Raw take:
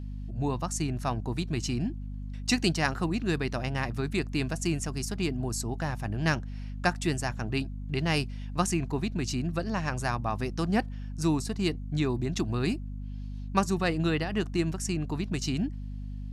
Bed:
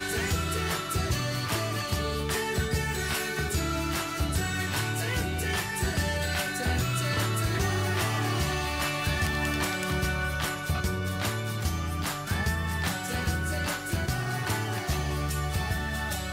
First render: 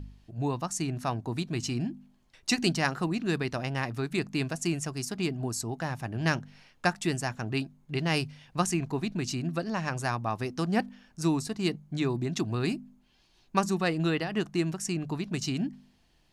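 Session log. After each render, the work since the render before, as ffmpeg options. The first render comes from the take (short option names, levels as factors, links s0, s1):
-af "bandreject=f=50:t=h:w=4,bandreject=f=100:t=h:w=4,bandreject=f=150:t=h:w=4,bandreject=f=200:t=h:w=4,bandreject=f=250:t=h:w=4"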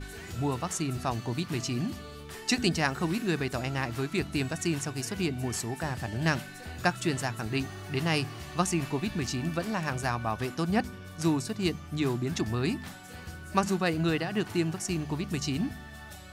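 -filter_complex "[1:a]volume=0.2[s0];[0:a][s0]amix=inputs=2:normalize=0"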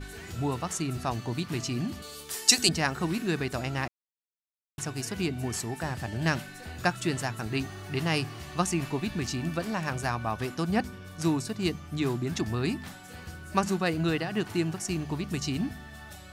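-filter_complex "[0:a]asettb=1/sr,asplit=3[s0][s1][s2];[s0]atrim=end=2.024[s3];[s1]atrim=start=2.02:end=2.69,asetpts=PTS-STARTPTS,afade=t=in:d=0.004:c=qsin,afade=t=out:st=0.666:d=0.004:c=qsin,bass=f=250:g=-10,treble=f=4000:g=15[s4];[s2]atrim=start=2.686[s5];[s3][s4]acrossfade=d=0.004:c1=hsin:c2=qsin[s6];[s6][s5]acrossfade=d=0.004:c1=qsin:c2=hsin,asplit=3[s7][s8][s9];[s7]atrim=end=3.88,asetpts=PTS-STARTPTS,afade=t=out:st=3.876:d=0.004:c=hsin[s10];[s8]atrim=start=3.88:end=4.78,asetpts=PTS-STARTPTS,volume=0[s11];[s9]atrim=start=4.78,asetpts=PTS-STARTPTS,afade=t=in:d=0.004:c=hsin[s12];[s10][s11][s12]concat=n=3:v=0:a=1"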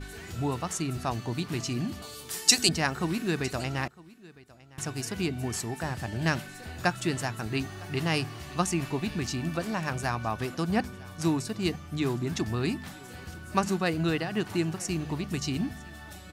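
-af "aecho=1:1:957:0.0794"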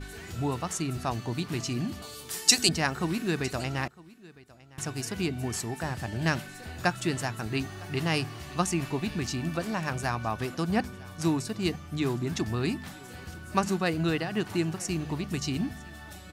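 -af anull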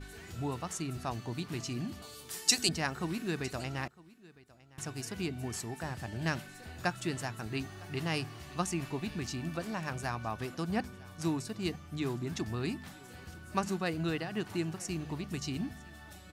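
-af "volume=0.501"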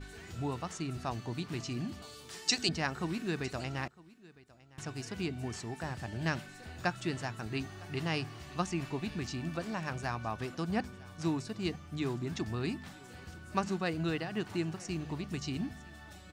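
-filter_complex "[0:a]acrossover=split=6600[s0][s1];[s1]acompressor=threshold=0.00224:ratio=4:attack=1:release=60[s2];[s0][s2]amix=inputs=2:normalize=0,equalizer=f=12000:t=o:w=0.4:g=-10.5"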